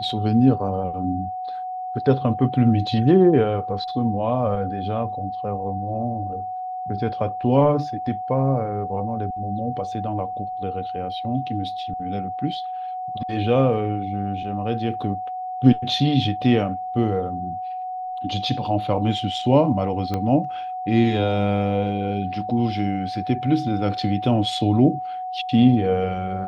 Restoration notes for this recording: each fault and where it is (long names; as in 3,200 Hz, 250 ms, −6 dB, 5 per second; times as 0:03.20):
whistle 740 Hz −27 dBFS
0:20.14: click −13 dBFS